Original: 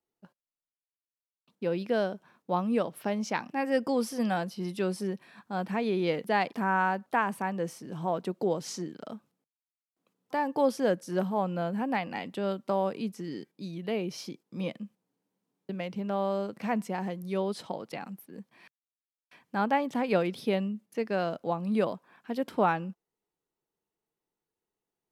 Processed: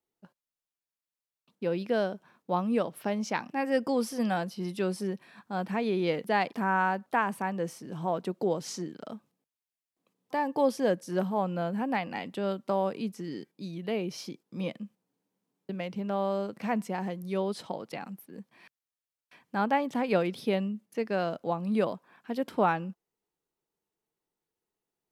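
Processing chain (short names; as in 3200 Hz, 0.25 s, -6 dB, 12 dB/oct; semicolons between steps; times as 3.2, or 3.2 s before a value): 9.13–11.09 notch 1400 Hz, Q 8.8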